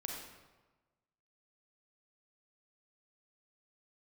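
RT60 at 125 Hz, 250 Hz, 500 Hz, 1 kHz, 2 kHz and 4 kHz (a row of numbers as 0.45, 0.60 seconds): 1.4, 1.2, 1.2, 1.2, 1.0, 0.85 seconds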